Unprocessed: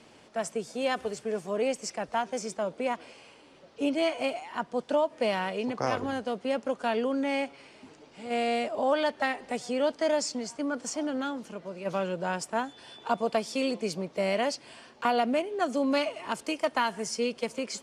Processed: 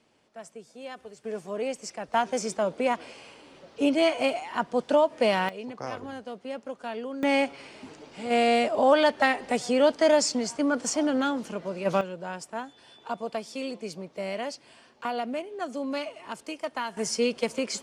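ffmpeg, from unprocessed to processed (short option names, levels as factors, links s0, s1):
-af "asetnsamples=n=441:p=0,asendcmd='1.24 volume volume -2.5dB;2.14 volume volume 4.5dB;5.49 volume volume -6.5dB;7.23 volume volume 6dB;12.01 volume volume -5dB;16.97 volume volume 4dB',volume=0.266"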